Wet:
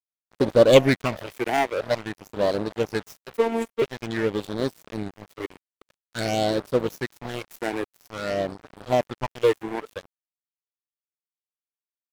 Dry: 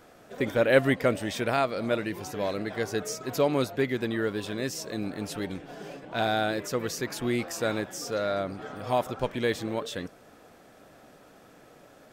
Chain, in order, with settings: self-modulated delay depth 0.3 ms; dynamic EQ 580 Hz, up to +5 dB, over -36 dBFS, Q 1.1; phaser stages 8, 0.49 Hz, lowest notch 160–2300 Hz; crossover distortion -35.5 dBFS; 3.37–3.82 robotiser 228 Hz; gain +6.5 dB

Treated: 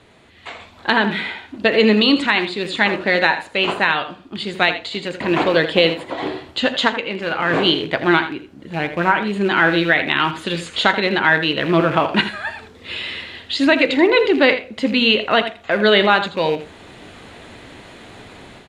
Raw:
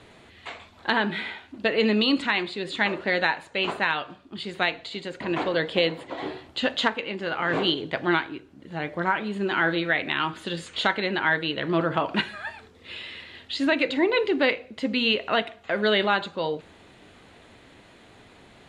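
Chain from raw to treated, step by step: rattling part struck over -36 dBFS, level -31 dBFS; AGC gain up to 11.5 dB; echo 82 ms -12 dB

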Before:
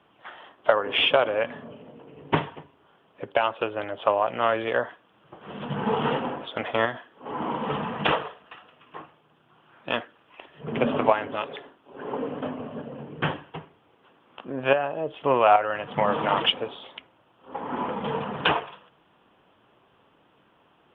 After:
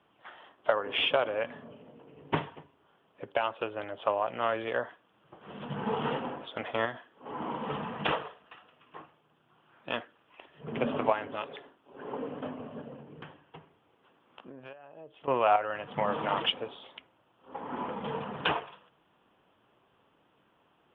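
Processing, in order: 12.94–15.28 compressor 10:1, threshold -38 dBFS, peak gain reduction 23.5 dB; gain -6.5 dB

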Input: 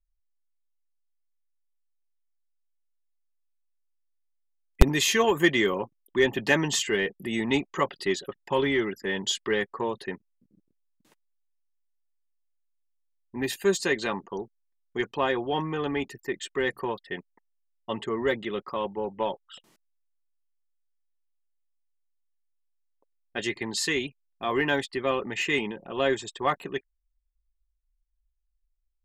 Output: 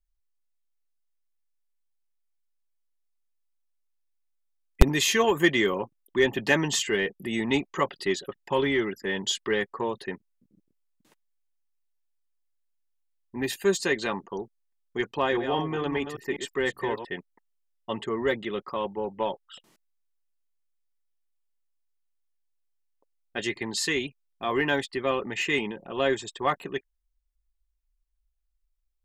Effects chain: 14.98–17.05 reverse delay 0.198 s, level -8 dB

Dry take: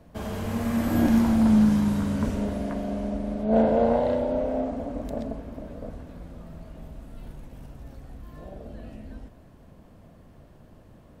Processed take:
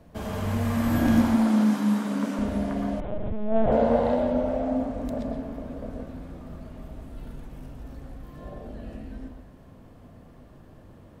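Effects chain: 1.22–2.39 steep high-pass 210 Hz; reverb RT60 0.40 s, pre-delay 0.107 s, DRR 2 dB; 3–3.72 LPC vocoder at 8 kHz pitch kept; dynamic EQ 380 Hz, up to -6 dB, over -38 dBFS, Q 2.1

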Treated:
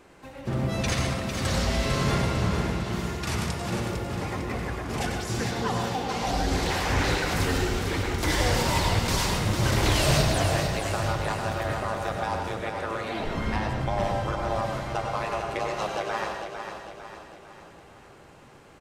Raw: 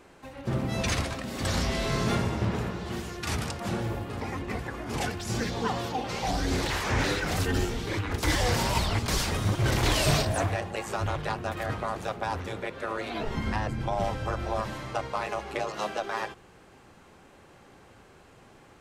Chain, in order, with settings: feedback echo 0.452 s, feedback 49%, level -7 dB; on a send at -4 dB: reverb RT60 0.50 s, pre-delay 93 ms

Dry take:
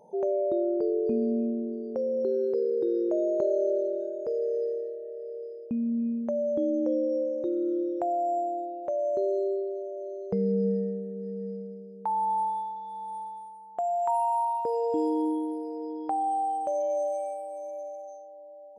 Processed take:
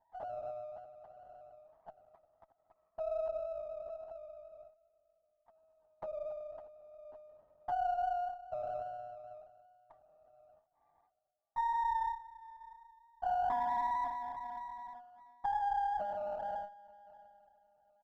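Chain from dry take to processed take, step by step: gate -33 dBFS, range -15 dB; compressor 5:1, threshold -29 dBFS, peak gain reduction 7.5 dB; brick-wall FIR band-pass 590–1300 Hz; air absorption 490 m; on a send: echo 0.653 s -21.5 dB; on the sum: speed mistake 24 fps film run at 25 fps; LPC vocoder at 8 kHz whisper; running maximum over 5 samples

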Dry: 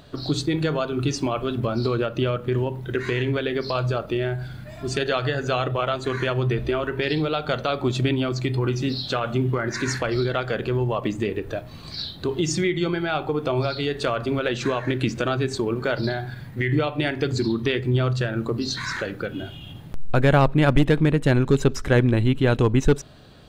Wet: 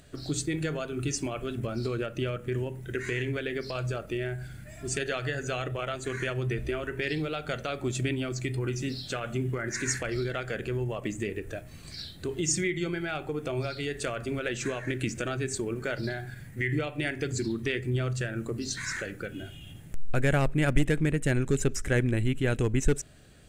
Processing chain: graphic EQ 125/250/500/1000/2000/4000/8000 Hz -4/-4/-3/-12/+4/-11/+11 dB; gain -2.5 dB

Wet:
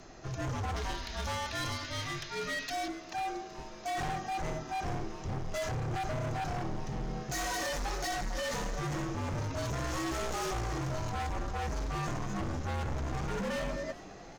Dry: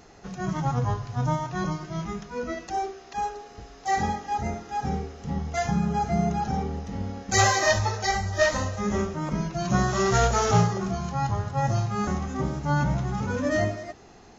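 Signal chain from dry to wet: 0.76–2.88 ten-band EQ 125 Hz -8 dB, 250 Hz -6 dB, 500 Hz -3 dB, 1000 Hz -5 dB, 2000 Hz +7 dB, 4000 Hz +12 dB; limiter -19 dBFS, peak gain reduction 10.5 dB; hard clip -32.5 dBFS, distortion -6 dB; frequency shift -60 Hz; frequency-shifting echo 0.407 s, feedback 53%, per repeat +150 Hz, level -19 dB

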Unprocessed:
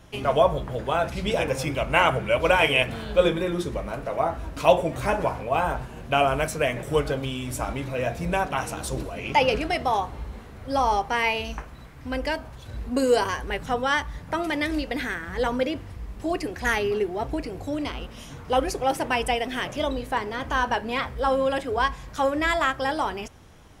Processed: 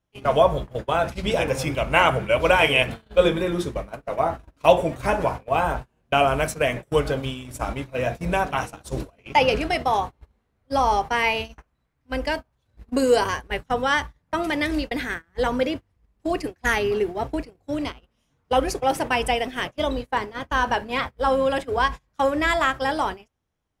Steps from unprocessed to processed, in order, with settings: gate -29 dBFS, range -31 dB; gain +2 dB

